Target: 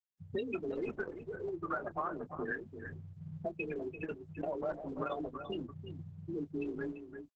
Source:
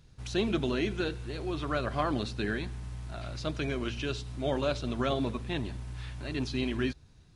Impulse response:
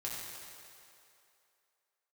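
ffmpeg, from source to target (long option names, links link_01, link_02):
-filter_complex "[0:a]afftfilt=real='re*gte(hypot(re,im),0.0891)':imag='im*gte(hypot(re,im),0.0891)':win_size=1024:overlap=0.75,highpass=frequency=1100:poles=1,afftdn=noise_reduction=23:noise_floor=-65,acompressor=threshold=-58dB:ratio=3,afreqshift=34,asplit=2[link_01][link_02];[link_02]adelay=24,volume=-14dB[link_03];[link_01][link_03]amix=inputs=2:normalize=0,asplit=2[link_04][link_05];[link_05]aecho=0:1:341:0.316[link_06];[link_04][link_06]amix=inputs=2:normalize=0,aresample=11025,aresample=44100,volume=18dB" -ar 48000 -c:a libopus -b:a 10k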